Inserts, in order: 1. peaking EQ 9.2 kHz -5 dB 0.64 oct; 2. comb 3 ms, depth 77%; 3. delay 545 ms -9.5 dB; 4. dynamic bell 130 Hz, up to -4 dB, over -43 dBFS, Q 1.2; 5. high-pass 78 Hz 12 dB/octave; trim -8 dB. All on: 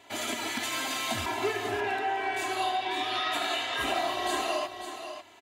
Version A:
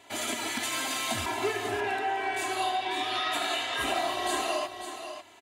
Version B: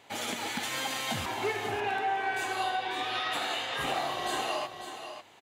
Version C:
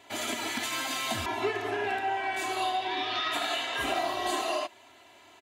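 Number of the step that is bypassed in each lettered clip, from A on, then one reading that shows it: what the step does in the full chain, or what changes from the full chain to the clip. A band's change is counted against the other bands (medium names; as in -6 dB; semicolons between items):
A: 1, 8 kHz band +3.0 dB; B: 2, loudness change -1.5 LU; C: 3, momentary loudness spread change -2 LU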